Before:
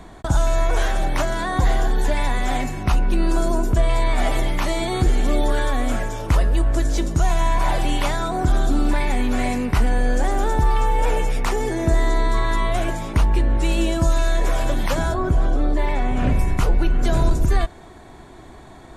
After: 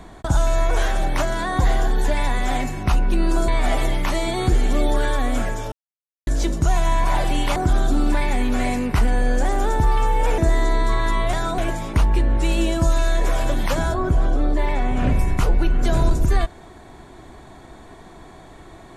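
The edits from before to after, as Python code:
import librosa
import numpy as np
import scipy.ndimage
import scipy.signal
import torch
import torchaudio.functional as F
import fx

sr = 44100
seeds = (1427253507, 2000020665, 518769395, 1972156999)

y = fx.edit(x, sr, fx.cut(start_s=3.48, length_s=0.54),
    fx.silence(start_s=6.26, length_s=0.55),
    fx.move(start_s=8.1, length_s=0.25, to_s=12.78),
    fx.cut(start_s=11.17, length_s=0.66), tone=tone)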